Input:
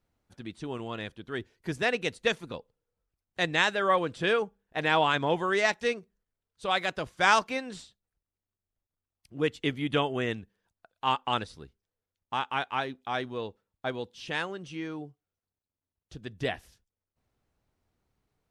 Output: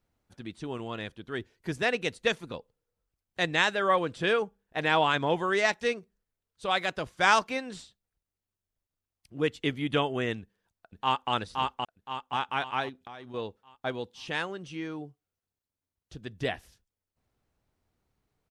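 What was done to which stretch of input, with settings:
10.40–11.32 s: echo throw 520 ms, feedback 45%, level -2.5 dB
12.89–13.34 s: compression 10:1, threshold -40 dBFS

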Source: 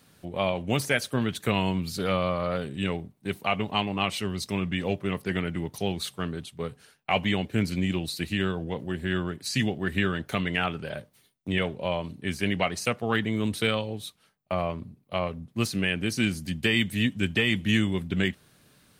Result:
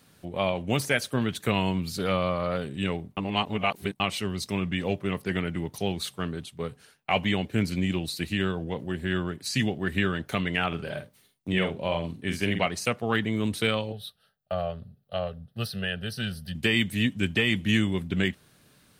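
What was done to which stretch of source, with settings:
3.17–4.00 s: reverse
10.67–12.66 s: doubling 48 ms -7 dB
13.92–16.55 s: static phaser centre 1.5 kHz, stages 8

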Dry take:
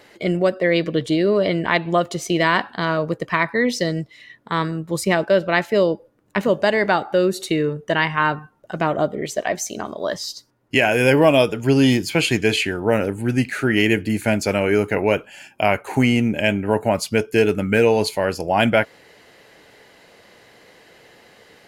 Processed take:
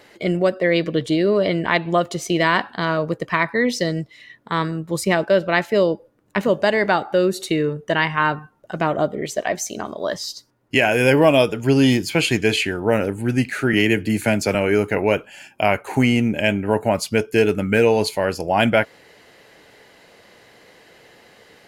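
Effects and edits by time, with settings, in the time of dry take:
13.73–14.55 s: three bands compressed up and down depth 40%

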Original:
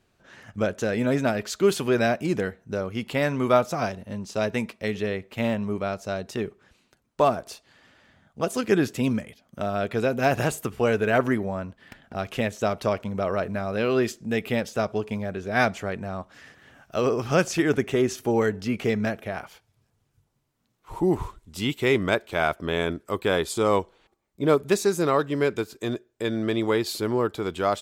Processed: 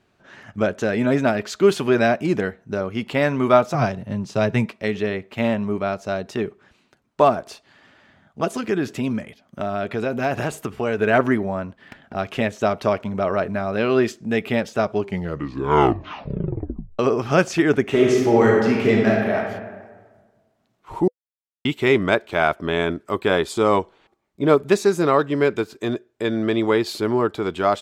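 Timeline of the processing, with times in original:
3.74–4.66 s: peaking EQ 130 Hz +13 dB 0.67 oct
8.55–10.99 s: compression 2:1, threshold -26 dBFS
14.92 s: tape stop 2.07 s
17.82–19.36 s: reverb throw, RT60 1.5 s, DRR -2 dB
21.08–21.65 s: mute
whole clip: low-pass 3.4 kHz 6 dB/octave; bass shelf 74 Hz -11 dB; band-stop 500 Hz, Q 12; trim +5.5 dB

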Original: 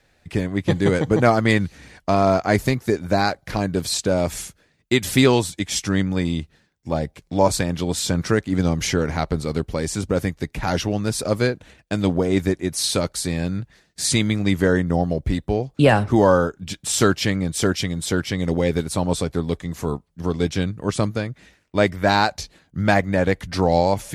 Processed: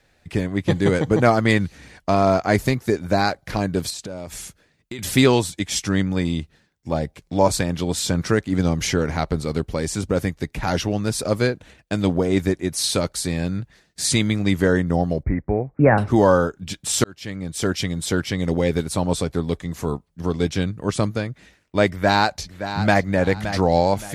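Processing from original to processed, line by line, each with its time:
3.90–4.99 s: compression 5:1, threshold -30 dBFS
15.23–15.98 s: steep low-pass 2.3 kHz 96 dB/octave
17.04–17.86 s: fade in
21.88–23.01 s: echo throw 570 ms, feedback 30%, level -10.5 dB

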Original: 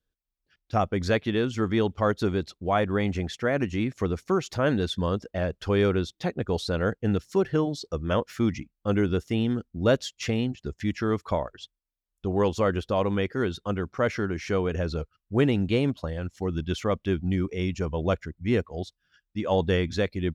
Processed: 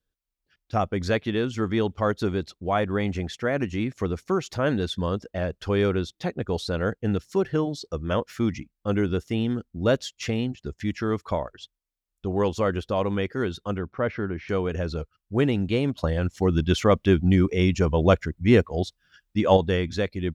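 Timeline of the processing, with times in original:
13.78–14.49 s: distance through air 300 m
15.98–19.57 s: gain +7 dB

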